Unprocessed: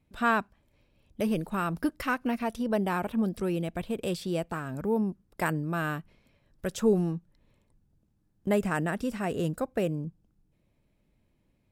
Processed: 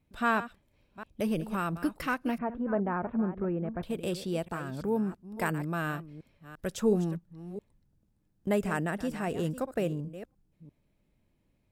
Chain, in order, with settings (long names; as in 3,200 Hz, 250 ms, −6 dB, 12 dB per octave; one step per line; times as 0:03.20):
delay that plays each chunk backwards 345 ms, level −13 dB
0:02.38–0:03.83: low-pass filter 1,700 Hz 24 dB per octave
level −2 dB